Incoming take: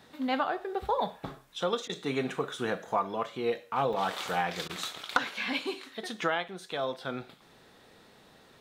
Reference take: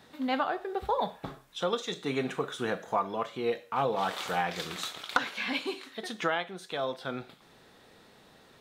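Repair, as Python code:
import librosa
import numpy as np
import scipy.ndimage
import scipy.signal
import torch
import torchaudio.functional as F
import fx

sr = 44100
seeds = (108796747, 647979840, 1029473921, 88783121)

y = fx.fix_interpolate(x, sr, at_s=(3.93, 6.48), length_ms=4.4)
y = fx.fix_interpolate(y, sr, at_s=(1.88, 4.68), length_ms=13.0)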